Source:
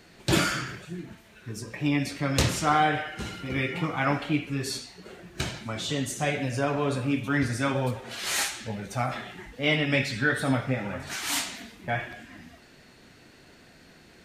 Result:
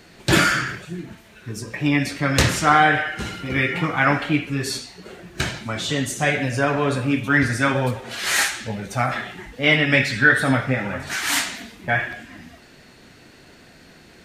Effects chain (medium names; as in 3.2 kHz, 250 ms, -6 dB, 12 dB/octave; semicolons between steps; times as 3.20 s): dynamic bell 1.7 kHz, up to +7 dB, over -44 dBFS, Q 2; trim +5.5 dB